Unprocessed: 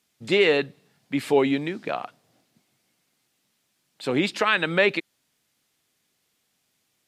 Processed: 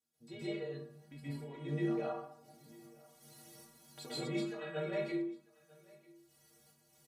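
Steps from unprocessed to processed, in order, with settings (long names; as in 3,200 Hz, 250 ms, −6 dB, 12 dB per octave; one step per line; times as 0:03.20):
source passing by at 0:02.90, 5 m/s, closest 6.2 metres
camcorder AGC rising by 12 dB per second
parametric band 2,600 Hz −9 dB 1.7 octaves
reversed playback
downward compressor 6 to 1, threshold −35 dBFS, peak gain reduction 15 dB
reversed playback
square-wave tremolo 1.3 Hz, depth 60%, duty 55%
stiff-string resonator 70 Hz, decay 0.61 s, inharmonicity 0.03
single-tap delay 945 ms −24 dB
dense smooth reverb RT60 0.6 s, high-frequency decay 0.55×, pre-delay 115 ms, DRR −9.5 dB
level +3 dB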